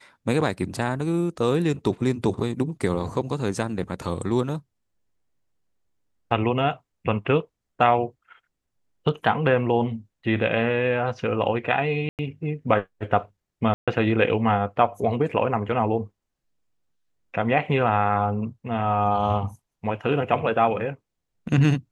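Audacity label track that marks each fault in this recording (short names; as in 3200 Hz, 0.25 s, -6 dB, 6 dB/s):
12.090000	12.190000	gap 98 ms
13.740000	13.880000	gap 0.136 s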